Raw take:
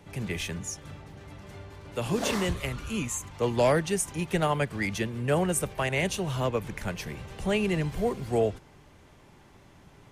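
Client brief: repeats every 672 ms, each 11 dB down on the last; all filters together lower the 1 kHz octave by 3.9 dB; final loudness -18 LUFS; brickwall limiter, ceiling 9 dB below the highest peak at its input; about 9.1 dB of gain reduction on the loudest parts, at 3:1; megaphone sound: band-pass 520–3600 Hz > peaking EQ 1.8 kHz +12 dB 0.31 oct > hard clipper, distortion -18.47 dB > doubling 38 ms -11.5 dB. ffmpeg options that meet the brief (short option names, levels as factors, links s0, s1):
-filter_complex "[0:a]equalizer=f=1000:t=o:g=-5,acompressor=threshold=0.0224:ratio=3,alimiter=level_in=2.24:limit=0.0631:level=0:latency=1,volume=0.447,highpass=520,lowpass=3600,equalizer=f=1800:t=o:w=0.31:g=12,aecho=1:1:672|1344|2016:0.282|0.0789|0.0221,asoftclip=type=hard:threshold=0.0224,asplit=2[s0][s1];[s1]adelay=38,volume=0.266[s2];[s0][s2]amix=inputs=2:normalize=0,volume=17.8"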